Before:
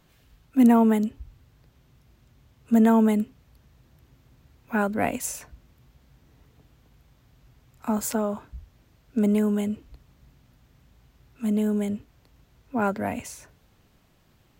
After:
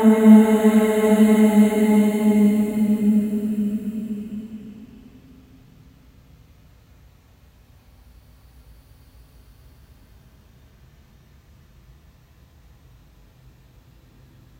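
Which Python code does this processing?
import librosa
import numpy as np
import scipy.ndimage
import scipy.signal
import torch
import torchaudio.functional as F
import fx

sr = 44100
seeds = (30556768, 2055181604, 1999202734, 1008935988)

y = fx.paulstretch(x, sr, seeds[0], factor=18.0, window_s=0.25, from_s=3.05)
y = F.gain(torch.from_numpy(y), 6.5).numpy()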